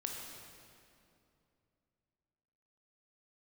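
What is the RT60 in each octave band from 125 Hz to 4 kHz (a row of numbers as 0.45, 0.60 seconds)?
3.4, 3.1, 2.8, 2.5, 2.2, 1.9 seconds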